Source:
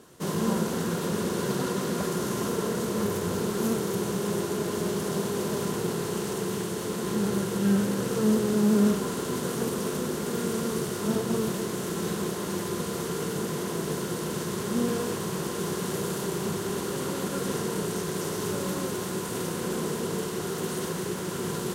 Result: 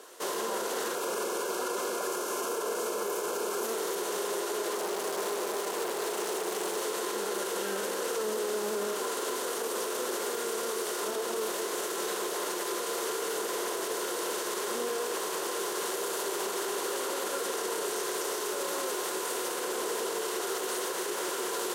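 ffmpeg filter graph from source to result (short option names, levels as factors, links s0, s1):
-filter_complex "[0:a]asettb=1/sr,asplit=3[s0][s1][s2];[s0]atrim=end=0.954[s3];[s1]atrim=start=0.95:end=3.65,asetpts=PTS-STARTPTS,afade=t=in:d=0.004:c=qsin,afade=t=out:st=2.696:d=0.004:c=qsin,asuperstop=centerf=1900:order=20:qfactor=6.1,equalizer=f=3700:t=o:w=0.57:g=-5[s4];[s2]atrim=start=3.646[s5];[s3][s4]acrossfade=d=0.004:c1=hsin:c2=qsin[s6];[s6][s5]acrossfade=d=0.004:c1=qsin:c2=hsin,asettb=1/sr,asplit=3[s7][s8][s9];[s7]atrim=end=4.724[s10];[s8]atrim=start=4.72:end=6.82,asetpts=PTS-STARTPTS,afade=t=in:d=0.004:c=qsin,afade=t=out:st=2.096:d=0.004:c=qsin,equalizer=f=130:t=o:w=2.9:g=5,volume=23.7,asoftclip=hard,volume=0.0422[s11];[s9]atrim=start=6.816[s12];[s10][s11]acrossfade=d=0.004:c1=hsin:c2=qsin[s13];[s13][s12]acrossfade=d=0.004:c1=qsin:c2=hsin,highpass=f=410:w=0.5412,highpass=f=410:w=1.3066,alimiter=level_in=1.78:limit=0.0631:level=0:latency=1:release=53,volume=0.562,volume=1.88"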